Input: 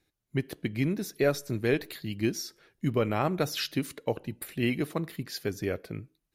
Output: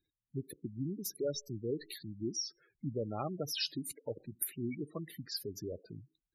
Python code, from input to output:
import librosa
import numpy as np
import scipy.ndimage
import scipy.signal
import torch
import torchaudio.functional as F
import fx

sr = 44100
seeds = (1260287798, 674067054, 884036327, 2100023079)

y = fx.spec_gate(x, sr, threshold_db=-10, keep='strong')
y = scipy.signal.lfilter([1.0, -0.8], [1.0], y)
y = F.gain(torch.from_numpy(y), 4.5).numpy()